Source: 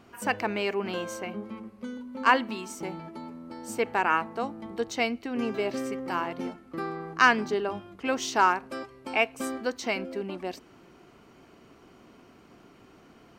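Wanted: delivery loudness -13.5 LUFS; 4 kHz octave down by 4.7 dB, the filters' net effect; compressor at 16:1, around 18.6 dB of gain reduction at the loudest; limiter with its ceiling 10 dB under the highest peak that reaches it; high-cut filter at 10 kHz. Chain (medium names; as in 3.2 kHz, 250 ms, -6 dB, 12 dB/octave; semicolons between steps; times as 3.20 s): low-pass 10 kHz; peaking EQ 4 kHz -7.5 dB; compression 16:1, threshold -33 dBFS; trim +27 dB; peak limiter -2.5 dBFS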